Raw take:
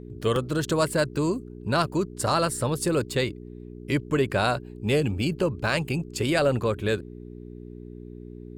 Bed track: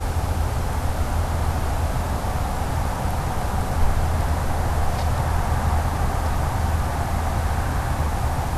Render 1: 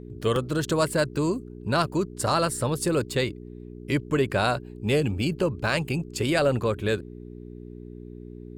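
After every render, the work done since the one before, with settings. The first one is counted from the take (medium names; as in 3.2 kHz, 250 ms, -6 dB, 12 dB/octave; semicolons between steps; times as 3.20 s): no audible change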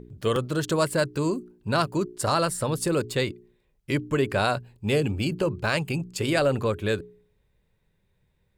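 de-hum 60 Hz, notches 7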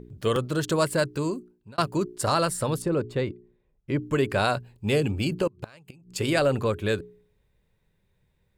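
0.85–1.78 s: fade out equal-power; 2.82–4.02 s: low-pass 1 kHz 6 dB/octave; 5.47–6.14 s: inverted gate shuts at -20 dBFS, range -26 dB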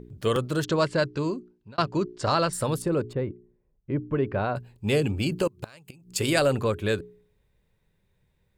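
0.64–2.53 s: low-pass 6 kHz 24 dB/octave; 3.13–4.56 s: tape spacing loss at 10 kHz 45 dB; 5.35–6.53 s: treble shelf 4.8 kHz +7.5 dB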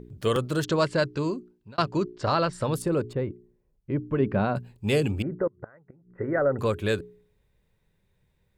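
2.10–2.74 s: distance through air 110 m; 4.20–4.72 s: peaking EQ 200 Hz +9.5 dB; 5.22–6.59 s: rippled Chebyshev low-pass 2 kHz, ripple 6 dB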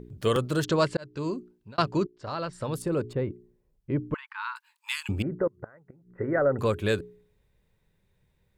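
0.97–1.38 s: fade in; 2.07–3.25 s: fade in linear, from -17 dB; 4.14–5.09 s: brick-wall FIR high-pass 850 Hz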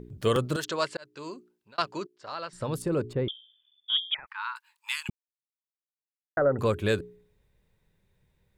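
0.56–2.53 s: high-pass 950 Hz 6 dB/octave; 3.28–4.27 s: frequency inversion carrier 3.5 kHz; 5.10–6.37 s: mute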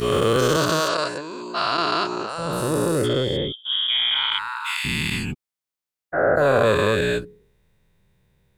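every event in the spectrogram widened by 480 ms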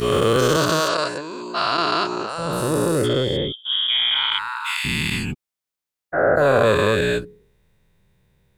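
trim +1.5 dB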